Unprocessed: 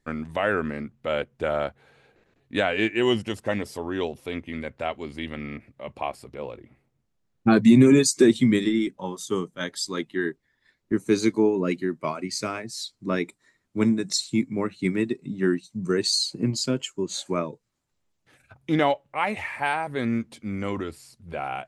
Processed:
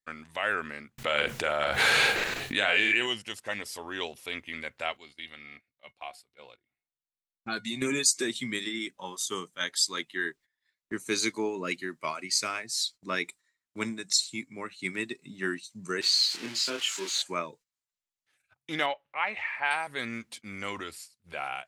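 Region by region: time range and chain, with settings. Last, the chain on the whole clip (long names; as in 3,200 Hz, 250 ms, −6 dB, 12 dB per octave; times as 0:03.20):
0:00.98–0:03.07: double-tracking delay 40 ms −8 dB + envelope flattener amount 100%
0:04.97–0:07.82: parametric band 3,900 Hz +6.5 dB 0.51 octaves + tuned comb filter 720 Hz, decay 0.16 s, mix 70%
0:16.01–0:17.22: spike at every zero crossing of −20 dBFS + band-pass filter 280–3,200 Hz + double-tracking delay 26 ms −3 dB
0:18.86–0:19.71: low-pass filter 2,800 Hz + low-shelf EQ 200 Hz −6.5 dB
whole clip: noise gate −46 dBFS, range −15 dB; tilt shelving filter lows −10 dB, about 820 Hz; automatic gain control gain up to 4 dB; level −8.5 dB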